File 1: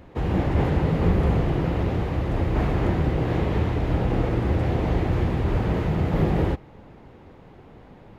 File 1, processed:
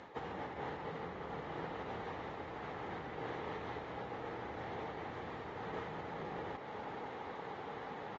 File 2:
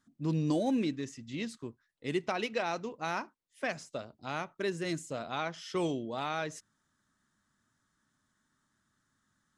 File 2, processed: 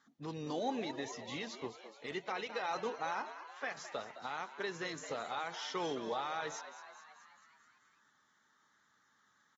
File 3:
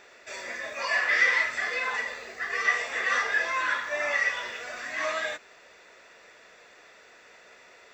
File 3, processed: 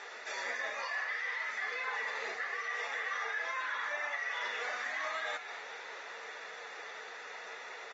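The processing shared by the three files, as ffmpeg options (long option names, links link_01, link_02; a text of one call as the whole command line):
ffmpeg -i in.wav -filter_complex "[0:a]equalizer=frequency=420:width=0.42:gain=-12,areverse,acompressor=threshold=-39dB:ratio=10,areverse,alimiter=level_in=15dB:limit=-24dB:level=0:latency=1:release=184,volume=-15dB,highpass=260,equalizer=frequency=450:width_type=q:width=4:gain=10,equalizer=frequency=830:width_type=q:width=4:gain=10,equalizer=frequency=1200:width_type=q:width=4:gain=5,equalizer=frequency=1800:width_type=q:width=4:gain=3,equalizer=frequency=2600:width_type=q:width=4:gain=-5,equalizer=frequency=4900:width_type=q:width=4:gain=-4,lowpass=frequency=6400:width=0.5412,lowpass=frequency=6400:width=1.3066,asplit=2[link_01][link_02];[link_02]asplit=7[link_03][link_04][link_05][link_06][link_07][link_08][link_09];[link_03]adelay=215,afreqshift=100,volume=-12.5dB[link_10];[link_04]adelay=430,afreqshift=200,volume=-16.7dB[link_11];[link_05]adelay=645,afreqshift=300,volume=-20.8dB[link_12];[link_06]adelay=860,afreqshift=400,volume=-25dB[link_13];[link_07]adelay=1075,afreqshift=500,volume=-29.1dB[link_14];[link_08]adelay=1290,afreqshift=600,volume=-33.3dB[link_15];[link_09]adelay=1505,afreqshift=700,volume=-37.4dB[link_16];[link_10][link_11][link_12][link_13][link_14][link_15][link_16]amix=inputs=7:normalize=0[link_17];[link_01][link_17]amix=inputs=2:normalize=0,volume=8dB" -ar 48000 -c:a aac -b:a 24k out.aac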